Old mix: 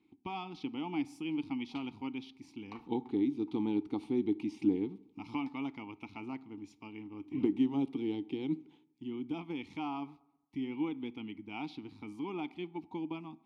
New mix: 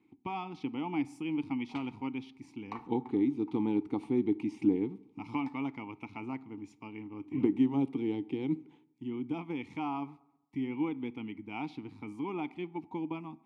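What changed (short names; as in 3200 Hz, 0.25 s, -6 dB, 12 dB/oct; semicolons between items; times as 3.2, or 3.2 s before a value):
speech -5.0 dB; master: add graphic EQ 125/250/500/1000/2000/4000/8000 Hz +10/+4/+7/+6/+8/-3/+7 dB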